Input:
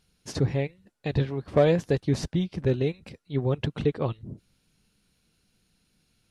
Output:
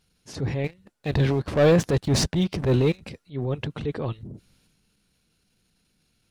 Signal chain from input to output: dynamic bell 180 Hz, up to -3 dB, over -41 dBFS, Q 8; 0.64–3.01 s: waveshaping leveller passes 2; transient shaper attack -7 dB, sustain +6 dB

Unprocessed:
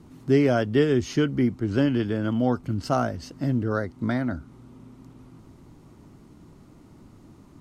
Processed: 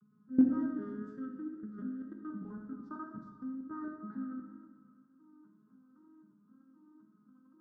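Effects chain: vocoder on a broken chord major triad, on G#3, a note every 259 ms; peaking EQ 460 Hz -3 dB 2.4 oct; 0.96–3.71 s: compression 4:1, threshold -39 dBFS, peak gain reduction 17.5 dB; FFT filter 190 Hz 0 dB, 470 Hz -14 dB, 670 Hz -23 dB, 1.3 kHz +6 dB, 2.6 kHz -29 dB, 3.8 kHz -22 dB; level held to a coarse grid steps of 23 dB; band-stop 2.2 kHz, Q 6; reverberation RT60 1.5 s, pre-delay 10 ms, DRR 2 dB; vibrato 2 Hz 29 cents; thinning echo 126 ms, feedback 79%, high-pass 510 Hz, level -21 dB; trim +4 dB

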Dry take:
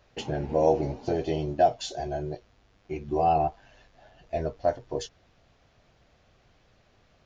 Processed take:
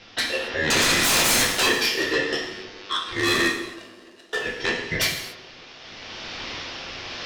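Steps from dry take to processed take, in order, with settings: recorder AGC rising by 6.9 dB/s; elliptic band-pass 840–4400 Hz, stop band 40 dB; low-pass that closes with the level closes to 2.1 kHz, closed at -27 dBFS; treble shelf 2.2 kHz +6 dB; 0.70–1.77 s: waveshaping leveller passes 5; in parallel at +0.5 dB: compression, threshold -37 dBFS, peak gain reduction 15.5 dB; on the sum: rotary cabinet horn 0.75 Hz; ring modulator 1.1 kHz; sine folder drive 13 dB, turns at -18 dBFS; 3.14–4.41 s: power-law waveshaper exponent 2; on a send: tape echo 154 ms, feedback 77%, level -15 dB, low-pass 1.5 kHz; on the sum: gated-style reverb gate 300 ms falling, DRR 0.5 dB

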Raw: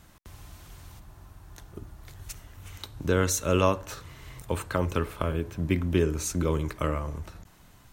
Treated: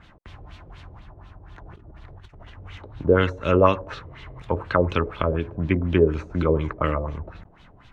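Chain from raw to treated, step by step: 1.65–2.50 s: compressor with a negative ratio -48 dBFS, ratio -1; LFO low-pass sine 4.1 Hz 490–3600 Hz; trim +3.5 dB

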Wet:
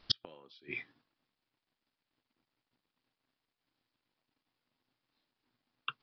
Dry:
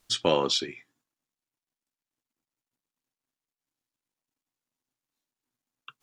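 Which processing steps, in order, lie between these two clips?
inverted gate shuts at -20 dBFS, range -40 dB; resampled via 11.025 kHz; trim +8 dB

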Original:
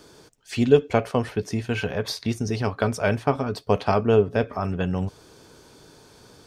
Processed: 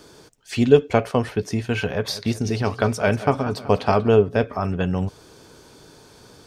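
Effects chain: 1.89–4.08 s: modulated delay 189 ms, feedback 59%, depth 119 cents, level -15.5 dB; trim +2.5 dB

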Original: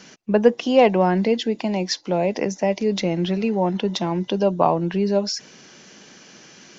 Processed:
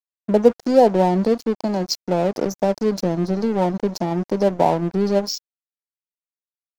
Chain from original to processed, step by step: FFT band-reject 1–4.1 kHz; in parallel at -1 dB: compression 12:1, threshold -30 dBFS, peak gain reduction 21.5 dB; on the sum: crossover distortion -30 dBFS; trim +1.5 dB

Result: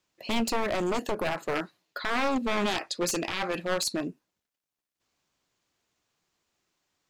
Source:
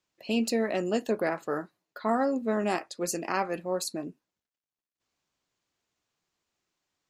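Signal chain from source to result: one-sided wavefolder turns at -27 dBFS; 1.55–4.08 s: peaking EQ 3.5 kHz +8 dB 1.8 oct; peak limiter -23.5 dBFS, peak gain reduction 10 dB; trim +4.5 dB

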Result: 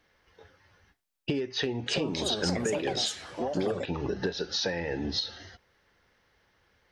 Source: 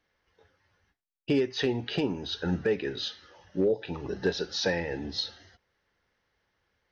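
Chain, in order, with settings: compression 12:1, threshold -35 dBFS, peak gain reduction 14.5 dB; 1.50–4.16 s: ever faster or slower copies 363 ms, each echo +5 st, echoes 2; trim +8 dB

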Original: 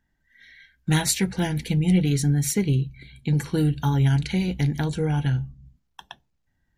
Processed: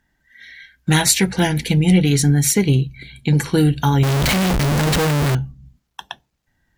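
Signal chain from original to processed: bass shelf 280 Hz -5.5 dB; in parallel at -1 dB: peak limiter -17.5 dBFS, peak gain reduction 8 dB; on the sum: Chebyshev shaper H 7 -37 dB, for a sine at -6 dBFS; 4.03–5.35 s: Schmitt trigger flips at -36.5 dBFS; trim +5 dB

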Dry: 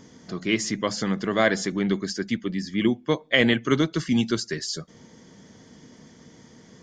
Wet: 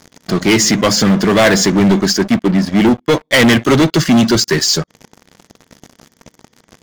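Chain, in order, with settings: 2.17–2.92 s: low-pass 2.5 kHz -> 1.5 kHz 6 dB/octave; waveshaping leveller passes 5

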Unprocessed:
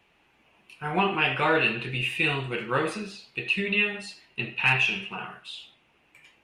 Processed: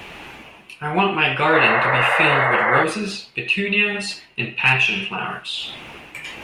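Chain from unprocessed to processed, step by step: painted sound noise, 1.53–2.84 s, 440–2200 Hz -24 dBFS; reverse; upward compressor, threshold -25 dBFS; reverse; trim +6 dB

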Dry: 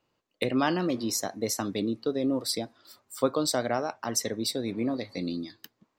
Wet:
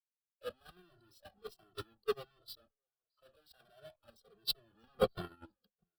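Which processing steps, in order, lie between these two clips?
local Wiener filter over 25 samples; in parallel at -1 dB: compression, threshold -38 dBFS, peak gain reduction 17.5 dB; on the sum: band-pass 340–6800 Hz; bass shelf 450 Hz +8.5 dB; fuzz box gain 46 dB, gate -53 dBFS; static phaser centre 1.4 kHz, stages 8; on a send: delay 634 ms -21 dB; on the sum: spectral noise reduction 13 dB; dynamic bell 750 Hz, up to -4 dB, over -27 dBFS, Q 0.83; gain riding 0.5 s; gate -15 dBFS, range -56 dB; endless flanger 2.1 ms -1.4 Hz; trim +15 dB

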